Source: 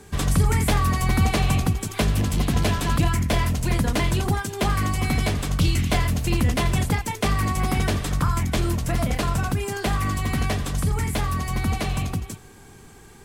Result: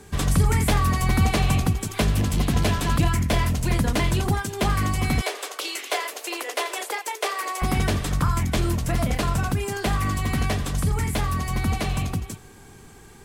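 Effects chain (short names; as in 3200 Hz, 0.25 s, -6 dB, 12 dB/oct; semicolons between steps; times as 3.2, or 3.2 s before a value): 5.21–7.62 steep high-pass 380 Hz 48 dB/oct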